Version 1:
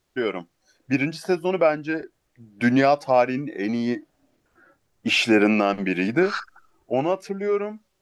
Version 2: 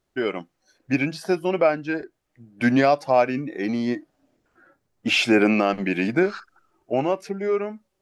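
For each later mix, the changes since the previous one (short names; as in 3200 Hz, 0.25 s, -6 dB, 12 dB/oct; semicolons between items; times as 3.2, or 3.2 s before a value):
second voice -8.5 dB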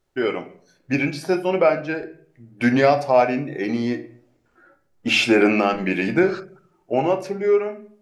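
reverb: on, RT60 0.55 s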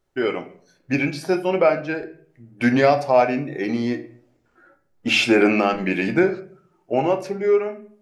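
second voice -12.0 dB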